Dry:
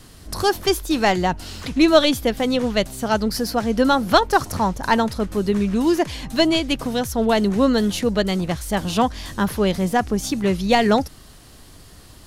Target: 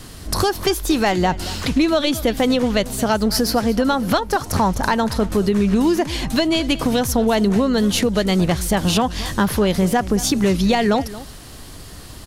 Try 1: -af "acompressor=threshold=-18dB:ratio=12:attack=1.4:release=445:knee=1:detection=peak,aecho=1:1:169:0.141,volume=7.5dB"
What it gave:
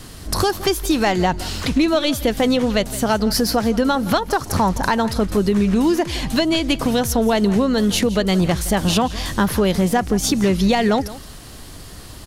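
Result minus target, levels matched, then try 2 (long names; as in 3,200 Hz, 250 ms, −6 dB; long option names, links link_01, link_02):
echo 57 ms early
-af "acompressor=threshold=-18dB:ratio=12:attack=1.4:release=445:knee=1:detection=peak,aecho=1:1:226:0.141,volume=7.5dB"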